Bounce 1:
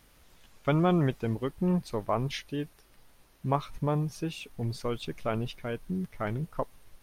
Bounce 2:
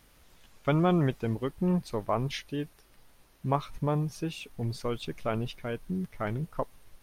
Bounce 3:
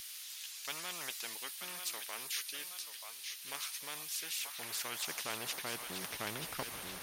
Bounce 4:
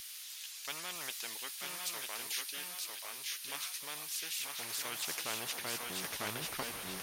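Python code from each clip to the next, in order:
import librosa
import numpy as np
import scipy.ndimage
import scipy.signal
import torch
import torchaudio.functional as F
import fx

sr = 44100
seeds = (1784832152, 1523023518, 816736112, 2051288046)

y1 = x
y2 = fx.filter_sweep_highpass(y1, sr, from_hz=3600.0, to_hz=130.0, start_s=4.2, end_s=6.5, q=0.87)
y2 = fx.echo_feedback(y2, sr, ms=933, feedback_pct=38, wet_db=-18.0)
y2 = fx.spectral_comp(y2, sr, ratio=4.0)
y2 = F.gain(torch.from_numpy(y2), -4.0).numpy()
y3 = y2 + 10.0 ** (-4.0 / 20.0) * np.pad(y2, (int(954 * sr / 1000.0), 0))[:len(y2)]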